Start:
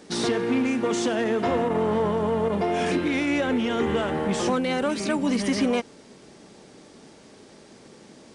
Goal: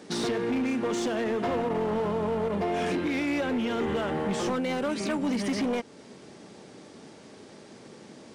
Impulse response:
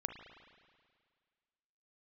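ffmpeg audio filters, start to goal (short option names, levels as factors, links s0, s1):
-filter_complex "[0:a]highpass=f=71:w=0.5412,highpass=f=71:w=1.3066,highshelf=f=4900:g=-4,asplit=2[s0][s1];[s1]acompressor=threshold=0.0251:ratio=6,volume=1.12[s2];[s0][s2]amix=inputs=2:normalize=0,asoftclip=type=hard:threshold=0.126,volume=0.531"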